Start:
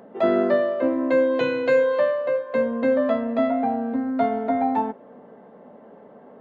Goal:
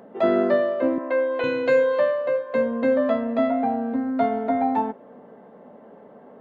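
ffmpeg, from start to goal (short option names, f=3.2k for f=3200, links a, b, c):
-filter_complex "[0:a]asettb=1/sr,asplit=3[a][b][c];[a]atrim=end=0.984[d];[b]atrim=start=0.98:end=1.44,asetpts=PTS-STARTPTS,afade=t=in:d=0.004:c=qsin,afade=t=out:st=0.456:d=0.004:c=qsin,highpass=510,lowpass=2.6k[e];[c]atrim=start=1.436[f];[d][e]acrossfade=d=0.004:c1=hsin:c2=qsin[g];[g][f]acrossfade=d=0.004:c1=qsin:c2=hsin"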